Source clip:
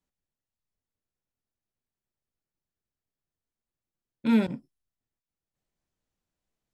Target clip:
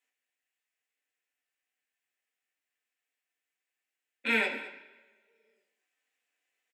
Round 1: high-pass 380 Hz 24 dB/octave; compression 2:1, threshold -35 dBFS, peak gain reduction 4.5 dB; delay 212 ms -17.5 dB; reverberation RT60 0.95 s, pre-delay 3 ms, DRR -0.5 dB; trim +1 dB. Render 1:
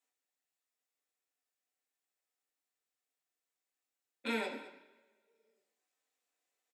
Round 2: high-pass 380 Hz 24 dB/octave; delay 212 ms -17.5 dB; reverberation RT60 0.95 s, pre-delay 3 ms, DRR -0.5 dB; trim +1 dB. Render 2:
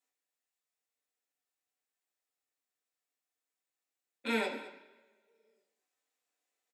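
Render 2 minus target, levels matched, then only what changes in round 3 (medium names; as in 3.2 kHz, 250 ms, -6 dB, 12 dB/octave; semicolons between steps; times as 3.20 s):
2 kHz band -3.5 dB
add after high-pass: high-order bell 2.2 kHz +9.5 dB 1.2 oct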